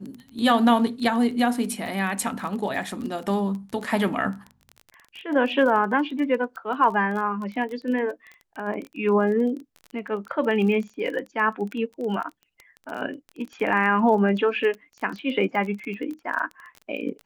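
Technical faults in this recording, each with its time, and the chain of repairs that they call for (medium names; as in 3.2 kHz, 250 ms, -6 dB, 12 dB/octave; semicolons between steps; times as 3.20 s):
crackle 21 per s -31 dBFS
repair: de-click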